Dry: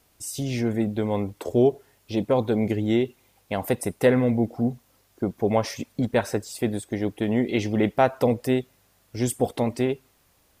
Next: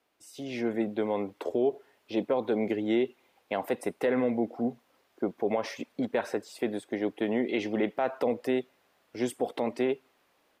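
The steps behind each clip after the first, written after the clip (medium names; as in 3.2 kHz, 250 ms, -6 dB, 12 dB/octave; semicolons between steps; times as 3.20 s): three-band isolator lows -22 dB, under 230 Hz, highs -13 dB, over 3.9 kHz; peak limiter -16.5 dBFS, peak gain reduction 9.5 dB; level rider gain up to 6.5 dB; trim -7.5 dB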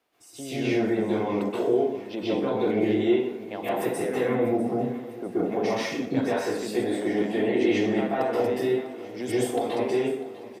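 peak limiter -24 dBFS, peak gain reduction 6.5 dB; feedback delay 648 ms, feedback 59%, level -17 dB; plate-style reverb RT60 0.72 s, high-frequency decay 0.75×, pre-delay 115 ms, DRR -8.5 dB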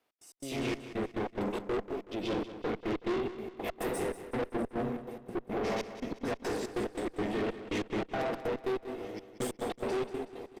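trance gate "x.x.xxx..x.x.xx." 142 bpm -60 dB; valve stage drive 29 dB, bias 0.65; feedback delay 187 ms, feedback 44%, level -13 dB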